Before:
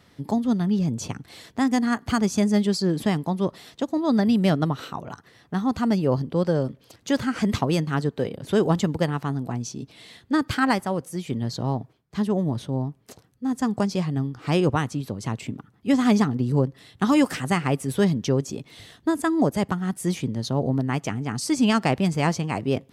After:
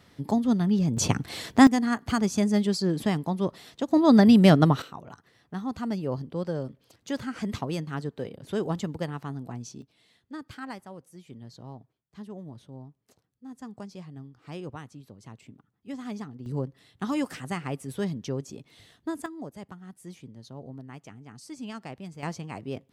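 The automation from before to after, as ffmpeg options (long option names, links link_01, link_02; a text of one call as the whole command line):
ffmpeg -i in.wav -af "asetnsamples=nb_out_samples=441:pad=0,asendcmd='0.97 volume volume 7.5dB;1.67 volume volume -3dB;3.91 volume volume 4dB;4.82 volume volume -8.5dB;9.82 volume volume -17.5dB;16.46 volume volume -9.5dB;19.26 volume volume -18.5dB;22.23 volume volume -11dB',volume=-1dB" out.wav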